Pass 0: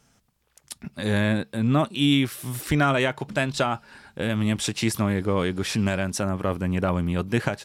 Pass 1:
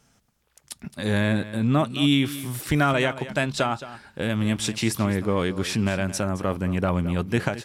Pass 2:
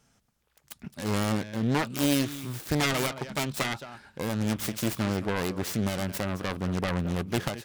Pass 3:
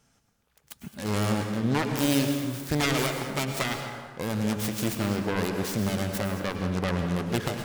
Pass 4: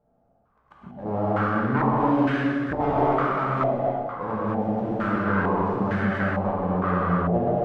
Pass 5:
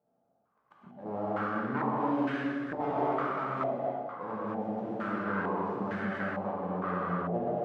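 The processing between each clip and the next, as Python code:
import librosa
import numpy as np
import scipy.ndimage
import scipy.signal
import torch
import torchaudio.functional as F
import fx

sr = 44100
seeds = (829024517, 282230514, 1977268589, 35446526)

y1 = x + 10.0 ** (-15.0 / 20.0) * np.pad(x, (int(219 * sr / 1000.0), 0))[:len(x)]
y2 = fx.self_delay(y1, sr, depth_ms=0.74)
y2 = F.gain(torch.from_numpy(y2), -4.0).numpy()
y3 = fx.rev_plate(y2, sr, seeds[0], rt60_s=1.5, hf_ratio=0.55, predelay_ms=90, drr_db=5.0)
y4 = fx.rev_gated(y3, sr, seeds[1], gate_ms=320, shape='flat', drr_db=-6.0)
y4 = fx.filter_held_lowpass(y4, sr, hz=2.2, low_hz=670.0, high_hz=1600.0)
y4 = F.gain(torch.from_numpy(y4), -4.5).numpy()
y5 = scipy.signal.sosfilt(scipy.signal.butter(2, 170.0, 'highpass', fs=sr, output='sos'), y4)
y5 = F.gain(torch.from_numpy(y5), -8.0).numpy()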